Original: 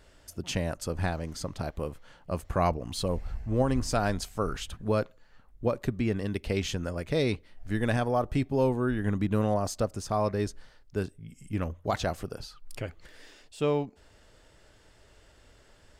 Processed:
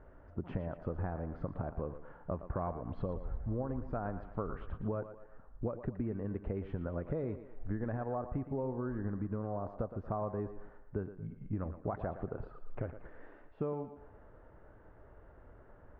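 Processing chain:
low-pass filter 1,400 Hz 24 dB per octave
downward compressor 12 to 1, threshold −35 dBFS, peak gain reduction 15.5 dB
feedback echo with a high-pass in the loop 115 ms, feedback 48%, high-pass 220 Hz, level −10.5 dB
level +2 dB

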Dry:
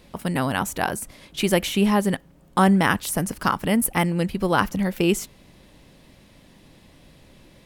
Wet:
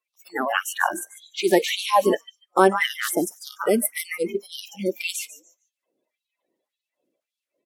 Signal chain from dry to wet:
spectral magnitudes quantised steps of 30 dB
0:04.15–0:04.89: elliptic band-stop filter 770–1,900 Hz
echo with shifted repeats 146 ms, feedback 32%, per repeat +55 Hz, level −10 dB
auto-filter high-pass sine 1.8 Hz 310–3,800 Hz
noise reduction from a noise print of the clip's start 27 dB

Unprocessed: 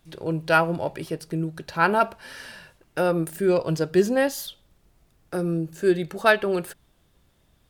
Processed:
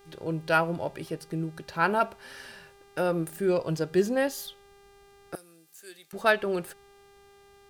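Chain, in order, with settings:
hum with harmonics 400 Hz, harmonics 38, −52 dBFS −6 dB per octave
0:05.35–0:06.13: first difference
level −4.5 dB

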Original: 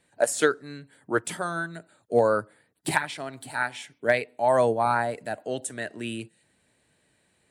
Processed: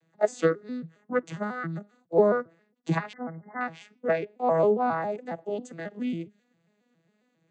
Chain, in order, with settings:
vocoder with an arpeggio as carrier major triad, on E3, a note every 136 ms
tape wow and flutter 24 cents
0:03.13–0:03.61: linear-phase brick-wall low-pass 2,200 Hz

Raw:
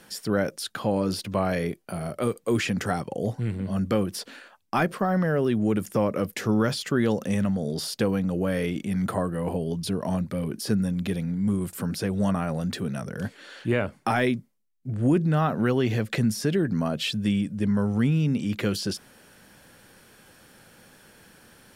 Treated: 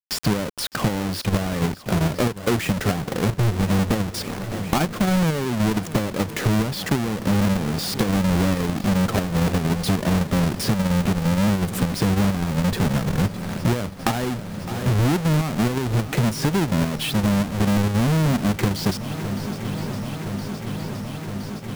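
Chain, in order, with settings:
each half-wave held at its own peak
bit-depth reduction 6 bits, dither none
on a send: feedback echo with a long and a short gap by turns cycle 1,017 ms, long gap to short 1.5 to 1, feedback 74%, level −21 dB
on the sum: downward compressor 12 to 1, threshold −30 dBFS, peak gain reduction 16 dB
low-shelf EQ 240 Hz +4.5 dB
in parallel at 0 dB: output level in coarse steps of 15 dB
on the sum: level +5 dB

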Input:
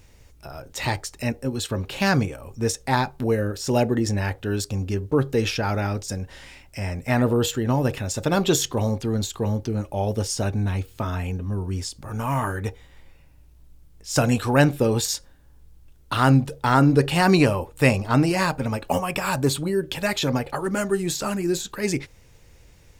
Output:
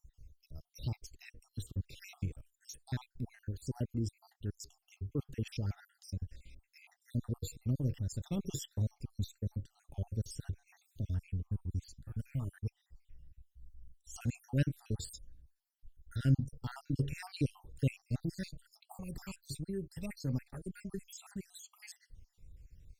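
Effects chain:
time-frequency cells dropped at random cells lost 63%
guitar amp tone stack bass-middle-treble 10-0-1
level +5 dB

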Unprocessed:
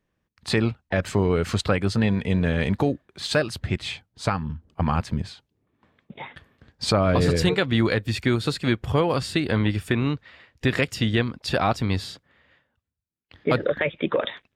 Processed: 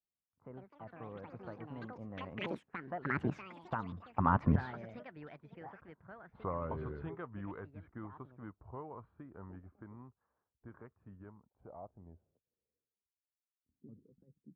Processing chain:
source passing by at 0:04.64, 44 m/s, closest 6.3 metres
low-pass that shuts in the quiet parts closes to 880 Hz, open at −34 dBFS
tape wow and flutter 29 cents
low-pass filter sweep 1,100 Hz → 210 Hz, 0:11.17–0:14.05
delay with pitch and tempo change per echo 258 ms, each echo +7 semitones, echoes 2, each echo −6 dB
level +1 dB

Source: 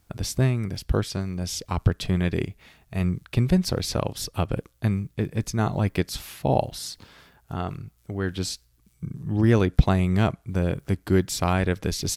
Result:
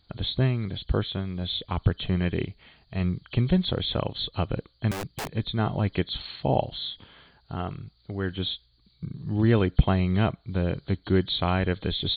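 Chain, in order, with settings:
hearing-aid frequency compression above 3,000 Hz 4 to 1
0:04.91–0:05.35: wrap-around overflow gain 25 dB
level −2 dB

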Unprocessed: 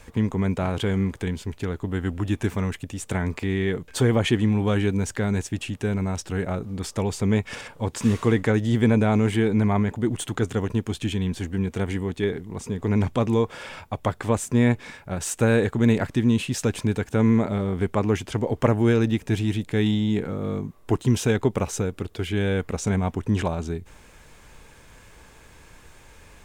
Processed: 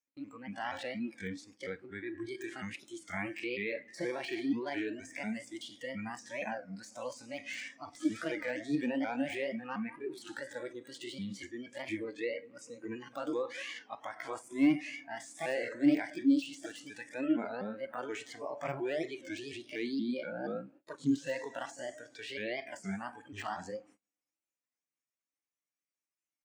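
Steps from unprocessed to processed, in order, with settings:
pitch shifter swept by a sawtooth +5.5 semitones, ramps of 238 ms
on a send: tape delay 100 ms, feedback 85%, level −18 dB, low-pass 3,300 Hz
on the sum: hard clipping −13 dBFS, distortion −25 dB
in parallel at −1.5 dB: compressor whose output falls as the input rises −27 dBFS, ratio −0.5
on the sum: harmonic and percussive parts rebalanced percussive −4 dB
loudspeaker in its box 280–7,800 Hz, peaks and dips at 290 Hz +8 dB, 420 Hz −9 dB, 620 Hz −5 dB, 990 Hz −4 dB, 2,300 Hz +6 dB, 3,700 Hz −7 dB
harmonic and percussive parts rebalanced harmonic +3 dB
four-comb reverb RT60 1.3 s, combs from 26 ms, DRR 13.5 dB
de-essing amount 85%
noise reduction from a noise print of the clip's start 19 dB
noise gate −49 dBFS, range −28 dB
wow of a warped record 33 1/3 rpm, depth 160 cents
level −9 dB

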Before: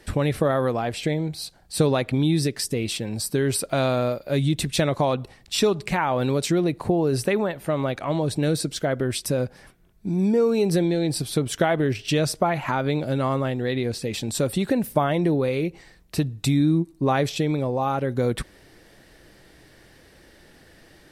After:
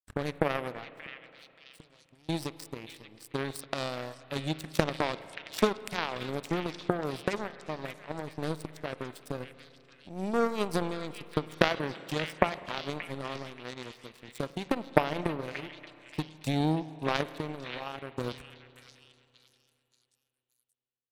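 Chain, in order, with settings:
0:00.84–0:02.29: downward compressor 12 to 1, threshold −28 dBFS, peak gain reduction 14 dB
power curve on the samples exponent 3
echo through a band-pass that steps 579 ms, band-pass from 2,500 Hz, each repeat 0.7 octaves, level −5.5 dB
spring reverb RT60 2.9 s, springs 32/51 ms, chirp 45 ms, DRR 14.5 dB
level +6 dB

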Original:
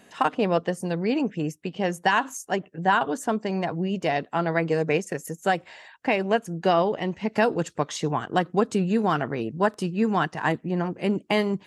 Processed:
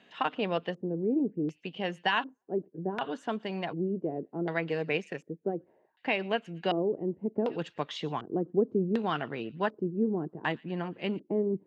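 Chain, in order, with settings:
on a send: delay with a high-pass on its return 117 ms, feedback 52%, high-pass 2,300 Hz, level −22 dB
on the sum: auto-filter low-pass square 0.67 Hz 380–3,300 Hz
high-pass filter 120 Hz
level −8 dB

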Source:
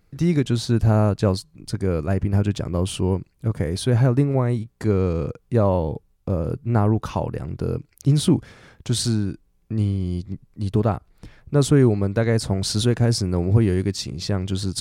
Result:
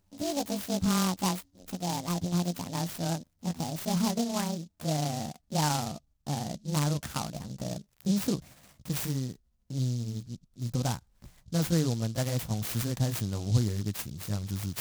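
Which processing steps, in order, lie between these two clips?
pitch glide at a constant tempo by +11.5 semitones ending unshifted
parametric band 400 Hz −9.5 dB 0.81 octaves
short delay modulated by noise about 5,000 Hz, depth 0.11 ms
level −7 dB

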